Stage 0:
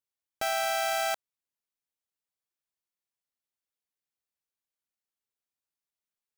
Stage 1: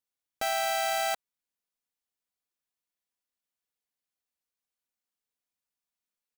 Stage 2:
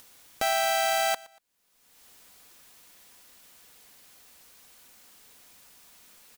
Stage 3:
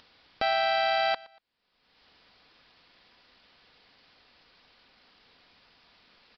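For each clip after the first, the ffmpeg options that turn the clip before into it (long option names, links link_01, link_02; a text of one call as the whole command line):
ffmpeg -i in.wav -af "aecho=1:1:4.1:0.32" out.wav
ffmpeg -i in.wav -af "aecho=1:1:118|236:0.0794|0.0175,acompressor=mode=upward:threshold=-33dB:ratio=2.5,volume=3.5dB" out.wav
ffmpeg -i in.wav -af "aresample=11025,aresample=44100" out.wav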